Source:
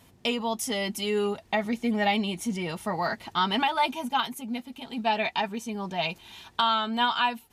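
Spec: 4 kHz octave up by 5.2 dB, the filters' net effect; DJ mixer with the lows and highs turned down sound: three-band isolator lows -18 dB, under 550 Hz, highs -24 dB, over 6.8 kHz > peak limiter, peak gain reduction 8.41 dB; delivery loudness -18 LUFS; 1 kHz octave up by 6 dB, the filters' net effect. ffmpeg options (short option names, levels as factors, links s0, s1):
-filter_complex "[0:a]acrossover=split=550 6800:gain=0.126 1 0.0631[s0][s1][s2];[s0][s1][s2]amix=inputs=3:normalize=0,equalizer=f=1000:t=o:g=8,equalizer=f=4000:t=o:g=7,volume=2.66,alimiter=limit=0.562:level=0:latency=1"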